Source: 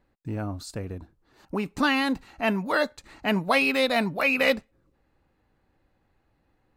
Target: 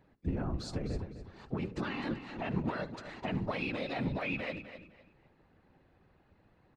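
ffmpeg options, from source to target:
ffmpeg -i in.wav -filter_complex "[0:a]acompressor=threshold=-30dB:ratio=6,bandreject=frequency=60:width_type=h:width=6,bandreject=frequency=120:width_type=h:width=6,bandreject=frequency=180:width_type=h:width=6,bandreject=frequency=240:width_type=h:width=6,bandreject=frequency=300:width_type=h:width=6,bandreject=frequency=360:width_type=h:width=6,bandreject=frequency=420:width_type=h:width=6,bandreject=frequency=480:width_type=h:width=6,asplit=2[link_01][link_02];[link_02]aecho=0:1:71:0.0841[link_03];[link_01][link_03]amix=inputs=2:normalize=0,asplit=2[link_04][link_05];[link_05]asetrate=58866,aresample=44100,atempo=0.749154,volume=-16dB[link_06];[link_04][link_06]amix=inputs=2:normalize=0,alimiter=level_in=7dB:limit=-24dB:level=0:latency=1:release=189,volume=-7dB,highpass=110,lowpass=4200,afftfilt=real='hypot(re,im)*cos(2*PI*random(0))':imag='hypot(re,im)*sin(2*PI*random(1))':win_size=512:overlap=0.75,lowshelf=frequency=190:gain=9,asplit=2[link_07][link_08];[link_08]aecho=0:1:255|510|765:0.282|0.0705|0.0176[link_09];[link_07][link_09]amix=inputs=2:normalize=0,volume=8.5dB" out.wav

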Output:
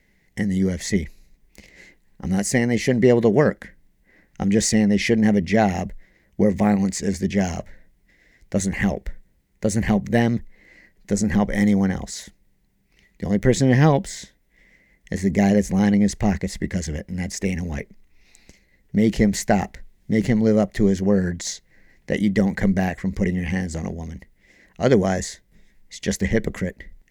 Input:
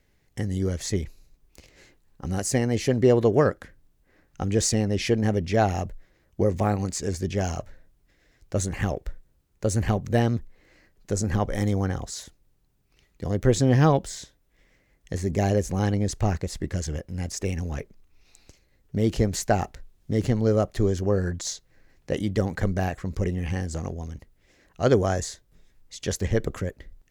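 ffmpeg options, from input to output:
ffmpeg -i in.wav -af "equalizer=frequency=100:width_type=o:width=0.33:gain=-8,equalizer=frequency=200:width_type=o:width=0.33:gain=10,equalizer=frequency=1250:width_type=o:width=0.33:gain=-7,equalizer=frequency=2000:width_type=o:width=0.33:gain=11,volume=2.5dB" out.wav

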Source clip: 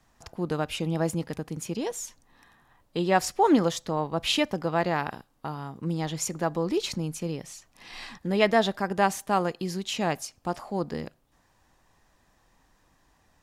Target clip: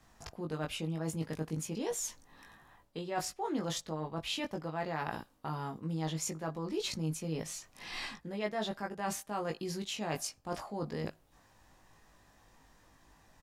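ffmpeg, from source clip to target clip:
ffmpeg -i in.wav -filter_complex "[0:a]areverse,acompressor=threshold=-35dB:ratio=6,areverse,asplit=2[link_01][link_02];[link_02]adelay=19,volume=-3.5dB[link_03];[link_01][link_03]amix=inputs=2:normalize=0" out.wav

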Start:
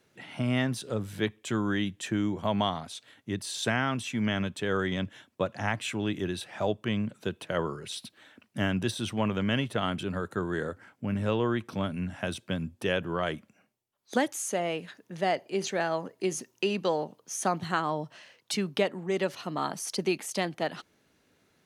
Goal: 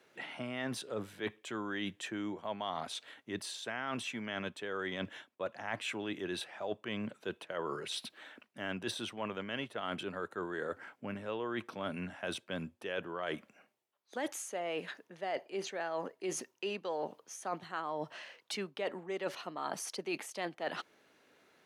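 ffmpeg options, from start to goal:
ffmpeg -i in.wav -af "bass=frequency=250:gain=-14,treble=frequency=4000:gain=-7,areverse,acompressor=threshold=-39dB:ratio=6,areverse,highpass=88,volume=4dB" out.wav

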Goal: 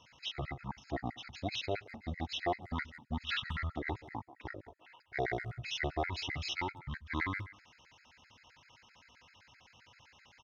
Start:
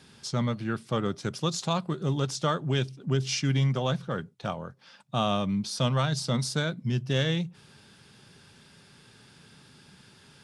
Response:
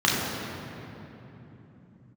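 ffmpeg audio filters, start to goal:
-filter_complex "[0:a]asetrate=26222,aresample=44100,atempo=1.68179,lowshelf=frequency=410:gain=-12,asplit=2[link_01][link_02];[link_02]adelay=180,highpass=300,lowpass=3400,asoftclip=type=hard:threshold=-25dB,volume=-16dB[link_03];[link_01][link_03]amix=inputs=2:normalize=0,asplit=2[link_04][link_05];[1:a]atrim=start_sample=2205,atrim=end_sample=4410[link_06];[link_05][link_06]afir=irnorm=-1:irlink=0,volume=-40.5dB[link_07];[link_04][link_07]amix=inputs=2:normalize=0,afftfilt=real='re*gt(sin(2*PI*7.7*pts/sr)*(1-2*mod(floor(b*sr/1024/1300),2)),0)':imag='im*gt(sin(2*PI*7.7*pts/sr)*(1-2*mod(floor(b*sr/1024/1300),2)),0)':win_size=1024:overlap=0.75"

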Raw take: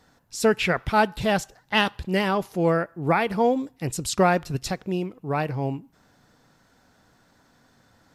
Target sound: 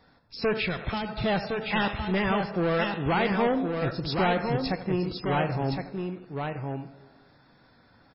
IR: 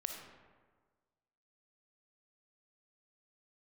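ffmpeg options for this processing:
-filter_complex "[0:a]bandreject=frequency=3000:width=11,asplit=2[link_01][link_02];[1:a]atrim=start_sample=2205,adelay=83[link_03];[link_02][link_03]afir=irnorm=-1:irlink=0,volume=-13.5dB[link_04];[link_01][link_04]amix=inputs=2:normalize=0,asoftclip=type=hard:threshold=-21.5dB,asettb=1/sr,asplit=3[link_05][link_06][link_07];[link_05]atrim=end=0.574[link_08];[link_06]atrim=start=0.57:end=1.24,asetpts=PTS-STARTPTS,afade=type=in:duration=0.004:curve=qsin,afade=type=out:start_time=0.666:duration=0.004:curve=qsin,acrossover=split=220|3000[link_09][link_10][link_11];[link_10]acompressor=threshold=-30dB:ratio=10[link_12];[link_09][link_12][link_11]amix=inputs=3:normalize=0[link_13];[link_07]atrim=start=1.236[link_14];[link_08][link_13]acrossfade=duration=0.004:curve1=hsin:curve2=qsin[link_15];[link_15][link_14]acrossfade=duration=0.004:curve1=qsin:curve2=hsin,aecho=1:1:1063:0.562" -ar 12000 -c:a libmp3lame -b:a 16k

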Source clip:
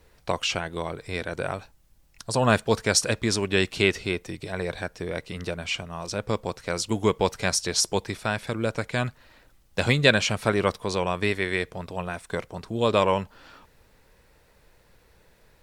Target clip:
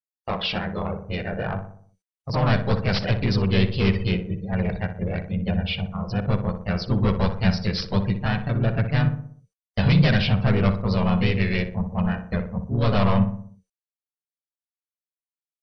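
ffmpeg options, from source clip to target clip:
ffmpeg -i in.wav -filter_complex "[0:a]acrossover=split=1900[link_01][link_02];[link_02]aeval=exprs='(mod(4.22*val(0)+1,2)-1)/4.22':channel_layout=same[link_03];[link_01][link_03]amix=inputs=2:normalize=0,aeval=exprs='val(0)+0.00562*sin(2*PI*460*n/s)':channel_layout=same,agate=range=-36dB:threshold=-34dB:ratio=16:detection=peak,asplit=2[link_04][link_05];[link_05]asetrate=52444,aresample=44100,atempo=0.840896,volume=-2dB[link_06];[link_04][link_06]amix=inputs=2:normalize=0,afftdn=noise_reduction=34:noise_floor=-35,aresample=11025,asoftclip=type=tanh:threshold=-18dB,aresample=44100,equalizer=frequency=190:width_type=o:width=0.24:gain=13,asplit=2[link_07][link_08];[link_08]adelay=61,lowpass=frequency=1500:poles=1,volume=-8dB,asplit=2[link_09][link_10];[link_10]adelay=61,lowpass=frequency=1500:poles=1,volume=0.53,asplit=2[link_11][link_12];[link_12]adelay=61,lowpass=frequency=1500:poles=1,volume=0.53,asplit=2[link_13][link_14];[link_14]adelay=61,lowpass=frequency=1500:poles=1,volume=0.53,asplit=2[link_15][link_16];[link_16]adelay=61,lowpass=frequency=1500:poles=1,volume=0.53,asplit=2[link_17][link_18];[link_18]adelay=61,lowpass=frequency=1500:poles=1,volume=0.53[link_19];[link_07][link_09][link_11][link_13][link_15][link_17][link_19]amix=inputs=7:normalize=0,asubboost=boost=6:cutoff=120" -ar 24000 -c:a mp2 -b:a 128k out.mp2

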